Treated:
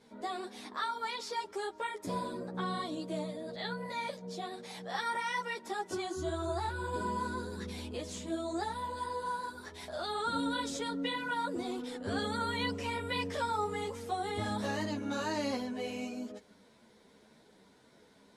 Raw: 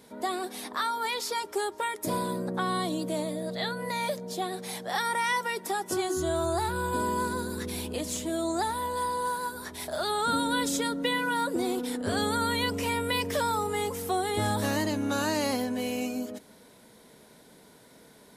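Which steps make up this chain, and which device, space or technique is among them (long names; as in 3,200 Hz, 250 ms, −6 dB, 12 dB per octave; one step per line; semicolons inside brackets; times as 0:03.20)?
string-machine ensemble chorus (string-ensemble chorus; low-pass filter 6,400 Hz 12 dB per octave)
level −3.5 dB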